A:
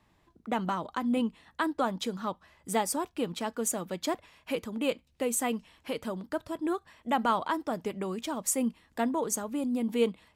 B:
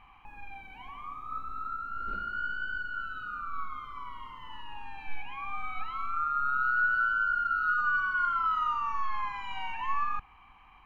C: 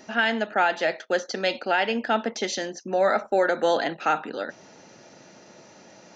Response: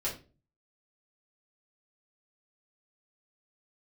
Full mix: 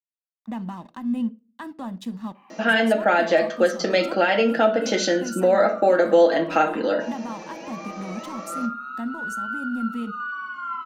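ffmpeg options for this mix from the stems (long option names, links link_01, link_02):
-filter_complex "[0:a]aeval=exprs='sgn(val(0))*max(abs(val(0))-0.00447,0)':channel_layout=same,volume=-5.5dB,asplit=2[link_01][link_02];[link_02]volume=-20dB[link_03];[1:a]highpass=frequency=270:width=0.5412,highpass=frequency=270:width=1.3066,adelay=2350,volume=-2dB,asplit=2[link_04][link_05];[link_05]volume=-9.5dB[link_06];[2:a]highpass=230,equalizer=frequency=580:width_type=o:width=0.44:gain=8,aecho=1:1:6.3:0.52,adelay=2500,volume=0.5dB,asplit=2[link_07][link_08];[link_08]volume=-5.5dB[link_09];[link_01][link_04]amix=inputs=2:normalize=0,aecho=1:1:1.1:0.63,alimiter=level_in=4.5dB:limit=-24dB:level=0:latency=1:release=202,volume=-4.5dB,volume=0dB[link_10];[3:a]atrim=start_sample=2205[link_11];[link_03][link_06][link_09]amix=inputs=3:normalize=0[link_12];[link_12][link_11]afir=irnorm=-1:irlink=0[link_13];[link_07][link_10][link_13]amix=inputs=3:normalize=0,equalizer=frequency=220:width=1.7:gain=12,acompressor=threshold=-18dB:ratio=2"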